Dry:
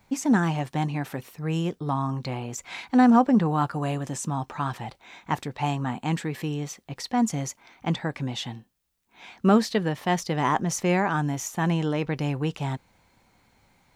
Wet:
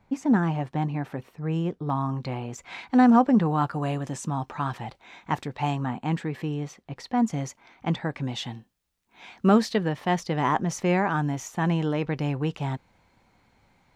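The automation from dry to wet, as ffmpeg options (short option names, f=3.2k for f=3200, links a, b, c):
-af "asetnsamples=n=441:p=0,asendcmd='1.9 lowpass f 3000;2.92 lowpass f 4800;5.86 lowpass f 2100;7.33 lowpass f 3400;8.24 lowpass f 7600;9.76 lowpass f 3700',lowpass=f=1.4k:p=1"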